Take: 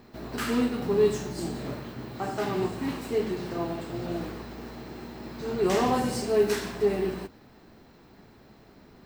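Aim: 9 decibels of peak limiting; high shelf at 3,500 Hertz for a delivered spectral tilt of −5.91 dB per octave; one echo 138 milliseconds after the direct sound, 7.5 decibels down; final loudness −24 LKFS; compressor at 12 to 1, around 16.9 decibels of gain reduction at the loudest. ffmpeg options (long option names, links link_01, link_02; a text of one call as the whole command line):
ffmpeg -i in.wav -af "highshelf=frequency=3500:gain=-7.5,acompressor=threshold=-35dB:ratio=12,alimiter=level_in=10dB:limit=-24dB:level=0:latency=1,volume=-10dB,aecho=1:1:138:0.422,volume=18dB" out.wav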